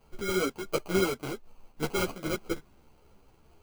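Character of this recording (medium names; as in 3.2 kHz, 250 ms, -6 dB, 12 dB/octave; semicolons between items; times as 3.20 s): aliases and images of a low sample rate 1.8 kHz, jitter 0%; a shimmering, thickened sound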